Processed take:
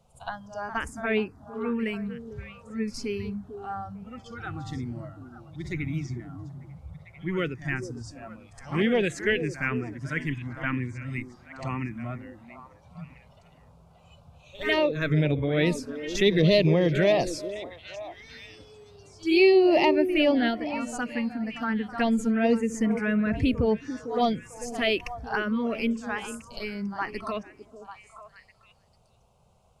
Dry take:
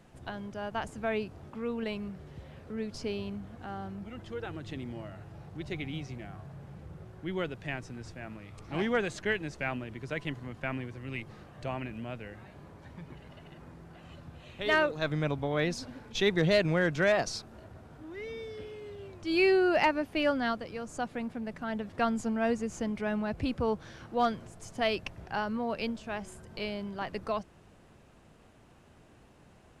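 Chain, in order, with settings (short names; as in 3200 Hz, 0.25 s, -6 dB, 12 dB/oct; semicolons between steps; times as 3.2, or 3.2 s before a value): spectral noise reduction 12 dB; in parallel at -0.5 dB: limiter -23 dBFS, peak gain reduction 8.5 dB; on the sum: pre-echo 65 ms -13 dB; envelope phaser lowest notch 300 Hz, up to 1500 Hz, full sweep at -19 dBFS; vibrato 6.2 Hz 7 cents; on a send: delay with a stepping band-pass 0.447 s, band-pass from 360 Hz, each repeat 1.4 oct, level -8 dB; on the sum: gain +3.5 dB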